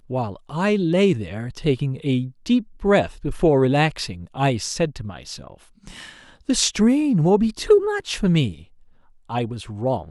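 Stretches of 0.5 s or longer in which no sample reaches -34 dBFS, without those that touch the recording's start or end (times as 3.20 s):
8.62–9.30 s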